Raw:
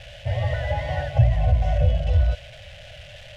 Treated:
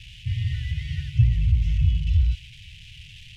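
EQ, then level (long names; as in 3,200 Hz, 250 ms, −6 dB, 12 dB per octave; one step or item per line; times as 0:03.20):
elliptic band-stop filter 200–2,400 Hz, stop band 80 dB
0.0 dB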